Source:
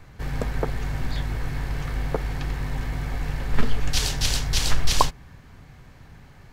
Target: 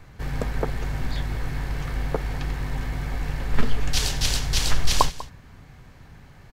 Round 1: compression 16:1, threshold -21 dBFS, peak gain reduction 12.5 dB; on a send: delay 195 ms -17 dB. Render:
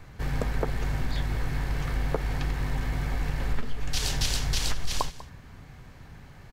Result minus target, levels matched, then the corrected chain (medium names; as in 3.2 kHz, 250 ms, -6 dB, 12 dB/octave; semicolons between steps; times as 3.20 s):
compression: peak gain reduction +12.5 dB
on a send: delay 195 ms -17 dB